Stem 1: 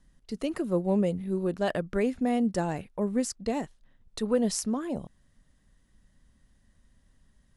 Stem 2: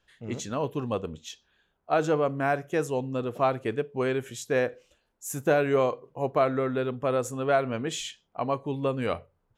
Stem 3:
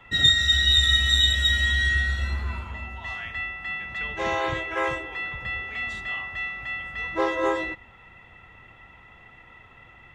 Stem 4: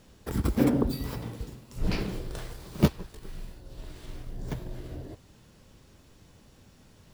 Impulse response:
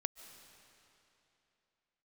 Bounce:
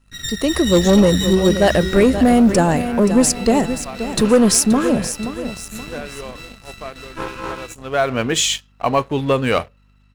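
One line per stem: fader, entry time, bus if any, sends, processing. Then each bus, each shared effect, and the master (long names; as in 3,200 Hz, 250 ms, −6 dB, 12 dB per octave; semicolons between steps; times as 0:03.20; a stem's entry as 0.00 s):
+2.0 dB, 0.00 s, no send, echo send −12 dB, high-shelf EQ 8,400 Hz +8.5 dB
+0.5 dB, 0.45 s, no send, no echo send, tilt shelving filter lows −4 dB, about 1,400 Hz; automatic ducking −20 dB, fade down 1.85 s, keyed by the first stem
−15.5 dB, 0.00 s, no send, no echo send, lower of the sound and its delayed copy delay 0.72 ms; mains hum 50 Hz, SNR 13 dB
−19.0 dB, 1.35 s, no send, echo send −4.5 dB, no processing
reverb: not used
echo: repeating echo 527 ms, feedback 42%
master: leveller curve on the samples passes 2; automatic gain control gain up to 6 dB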